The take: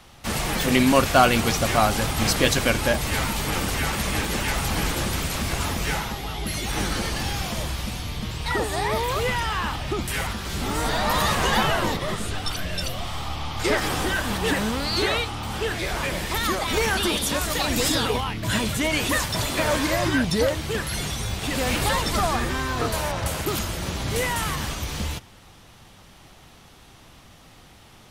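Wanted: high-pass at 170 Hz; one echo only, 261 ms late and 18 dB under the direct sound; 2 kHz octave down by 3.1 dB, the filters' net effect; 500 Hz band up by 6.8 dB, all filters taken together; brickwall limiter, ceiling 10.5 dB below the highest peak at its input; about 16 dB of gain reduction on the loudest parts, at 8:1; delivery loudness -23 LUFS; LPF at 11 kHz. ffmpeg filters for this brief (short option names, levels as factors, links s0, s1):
-af "highpass=170,lowpass=11000,equalizer=f=500:t=o:g=8.5,equalizer=f=2000:t=o:g=-4.5,acompressor=threshold=0.0562:ratio=8,alimiter=limit=0.0631:level=0:latency=1,aecho=1:1:261:0.126,volume=2.99"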